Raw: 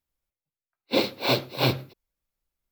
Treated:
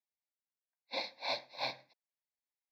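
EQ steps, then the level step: BPF 530–5200 Hz; bell 1200 Hz -5 dB 0.27 oct; fixed phaser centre 2000 Hz, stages 8; -8.0 dB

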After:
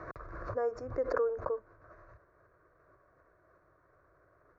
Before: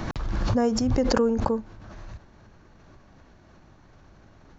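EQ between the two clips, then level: band-pass 1000 Hz, Q 1.2; tilt -2.5 dB/oct; fixed phaser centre 840 Hz, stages 6; -2.0 dB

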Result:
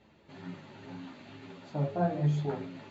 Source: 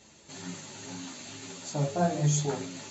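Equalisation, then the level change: air absorption 390 m; -1.5 dB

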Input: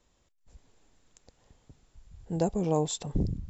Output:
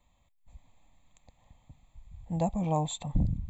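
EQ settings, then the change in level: fixed phaser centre 1500 Hz, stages 6; notch 2900 Hz, Q 6.4; +3.0 dB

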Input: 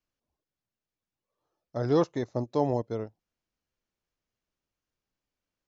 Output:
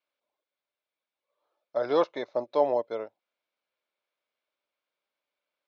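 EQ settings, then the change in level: speaker cabinet 430–4700 Hz, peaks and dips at 580 Hz +9 dB, 990 Hz +4 dB, 1400 Hz +4 dB, 2200 Hz +8 dB, 3600 Hz +6 dB; notch 1900 Hz, Q 15; 0.0 dB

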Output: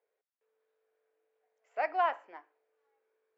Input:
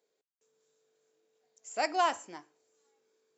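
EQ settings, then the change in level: Chebyshev band-pass 530–2100 Hz, order 2; air absorption 88 m; 0.0 dB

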